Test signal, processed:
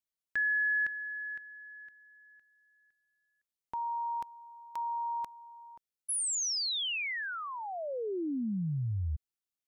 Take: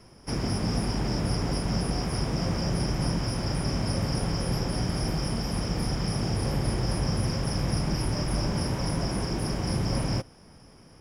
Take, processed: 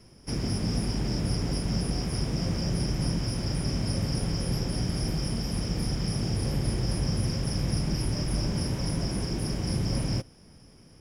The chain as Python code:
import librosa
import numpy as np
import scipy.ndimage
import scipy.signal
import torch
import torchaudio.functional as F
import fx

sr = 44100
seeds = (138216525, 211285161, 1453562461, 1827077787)

y = fx.peak_eq(x, sr, hz=1000.0, db=-7.5, octaves=1.9)